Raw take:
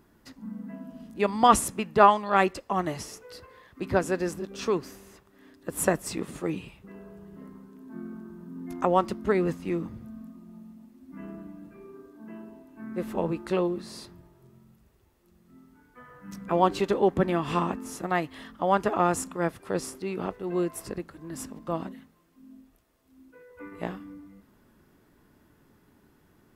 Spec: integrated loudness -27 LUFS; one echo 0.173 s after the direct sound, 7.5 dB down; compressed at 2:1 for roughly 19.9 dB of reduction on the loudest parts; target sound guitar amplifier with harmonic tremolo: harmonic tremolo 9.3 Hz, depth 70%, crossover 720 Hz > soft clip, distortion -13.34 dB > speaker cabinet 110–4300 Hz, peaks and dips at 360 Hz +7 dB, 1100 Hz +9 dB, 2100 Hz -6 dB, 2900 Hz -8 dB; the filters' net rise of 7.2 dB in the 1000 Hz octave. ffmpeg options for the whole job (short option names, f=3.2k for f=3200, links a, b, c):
-filter_complex "[0:a]equalizer=f=1k:t=o:g=3.5,acompressor=threshold=-47dB:ratio=2,aecho=1:1:173:0.422,acrossover=split=720[a][b];[a]aeval=exprs='val(0)*(1-0.7/2+0.7/2*cos(2*PI*9.3*n/s))':c=same[c];[b]aeval=exprs='val(0)*(1-0.7/2-0.7/2*cos(2*PI*9.3*n/s))':c=same[d];[c][d]amix=inputs=2:normalize=0,asoftclip=threshold=-35dB,highpass=110,equalizer=f=360:t=q:w=4:g=7,equalizer=f=1.1k:t=q:w=4:g=9,equalizer=f=2.1k:t=q:w=4:g=-6,equalizer=f=2.9k:t=q:w=4:g=-8,lowpass=f=4.3k:w=0.5412,lowpass=f=4.3k:w=1.3066,volume=17dB"